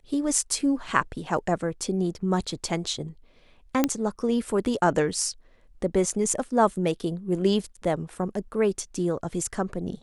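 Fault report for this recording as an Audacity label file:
3.840000	3.840000	pop -7 dBFS

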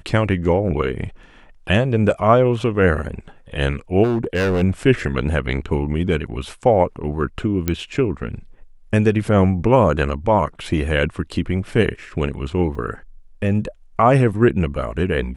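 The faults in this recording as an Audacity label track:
4.030000	4.620000	clipped -15.5 dBFS
7.680000	7.680000	pop -6 dBFS
12.750000	12.750000	dropout 4.2 ms

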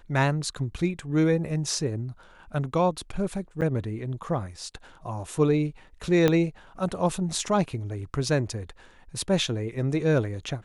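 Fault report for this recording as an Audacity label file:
3.610000	3.620000	dropout 7.4 ms
6.280000	6.280000	pop -9 dBFS

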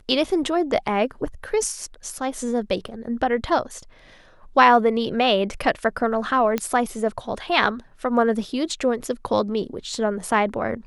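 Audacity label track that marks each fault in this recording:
2.880000	2.880000	dropout 4.4 ms
6.580000	6.580000	pop -9 dBFS

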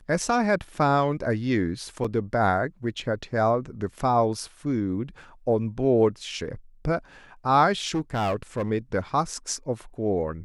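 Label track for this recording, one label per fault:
2.040000	2.050000	dropout 5.3 ms
7.840000	8.700000	clipped -21.5 dBFS

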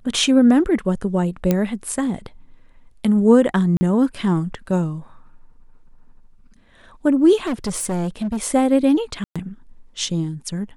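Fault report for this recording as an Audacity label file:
1.510000	1.510000	pop -5 dBFS
3.770000	3.810000	dropout 40 ms
7.440000	8.470000	clipped -19.5 dBFS
9.240000	9.360000	dropout 116 ms

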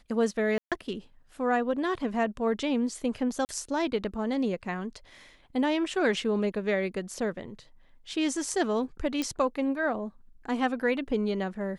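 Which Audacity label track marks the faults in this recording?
0.580000	0.720000	dropout 137 ms
3.450000	3.490000	dropout 39 ms
9.220000	9.220000	pop -16 dBFS

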